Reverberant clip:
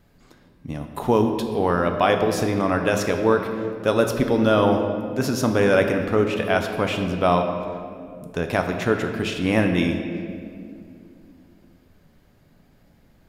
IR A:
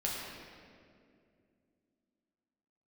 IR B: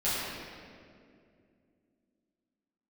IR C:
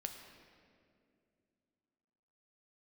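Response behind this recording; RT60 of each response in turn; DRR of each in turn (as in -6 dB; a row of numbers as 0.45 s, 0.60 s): C; 2.4 s, 2.3 s, 2.4 s; -5.0 dB, -13.0 dB, 4.0 dB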